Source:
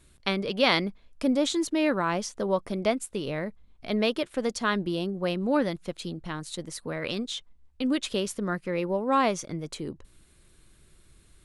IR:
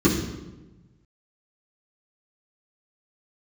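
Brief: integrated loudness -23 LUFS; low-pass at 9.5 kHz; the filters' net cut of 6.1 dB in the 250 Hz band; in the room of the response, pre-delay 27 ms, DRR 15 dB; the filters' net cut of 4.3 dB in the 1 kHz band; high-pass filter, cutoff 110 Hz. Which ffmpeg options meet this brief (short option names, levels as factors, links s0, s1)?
-filter_complex "[0:a]highpass=110,lowpass=9500,equalizer=f=250:t=o:g=-7.5,equalizer=f=1000:t=o:g=-5,asplit=2[s0][s1];[1:a]atrim=start_sample=2205,adelay=27[s2];[s1][s2]afir=irnorm=-1:irlink=0,volume=0.0251[s3];[s0][s3]amix=inputs=2:normalize=0,volume=2.37"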